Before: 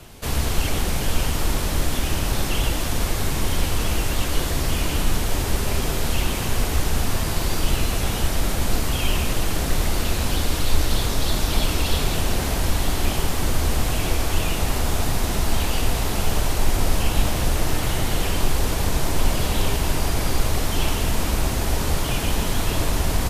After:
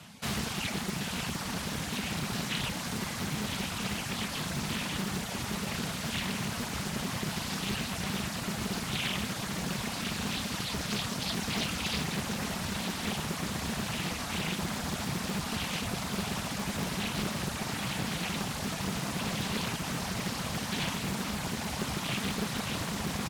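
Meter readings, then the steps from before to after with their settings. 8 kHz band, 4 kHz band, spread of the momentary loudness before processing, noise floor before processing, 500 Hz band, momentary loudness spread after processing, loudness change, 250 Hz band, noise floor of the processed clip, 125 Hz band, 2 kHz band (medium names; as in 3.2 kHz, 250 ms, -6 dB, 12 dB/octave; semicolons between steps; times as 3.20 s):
-9.0 dB, -6.5 dB, 1 LU, -25 dBFS, -11.0 dB, 2 LU, -9.0 dB, -5.0 dB, -37 dBFS, -11.5 dB, -5.5 dB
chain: frequency weighting A; reverb removal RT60 1.8 s; resonant low shelf 270 Hz +10.5 dB, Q 3; echo from a far wall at 210 m, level -8 dB; loudspeaker Doppler distortion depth 0.9 ms; trim -3.5 dB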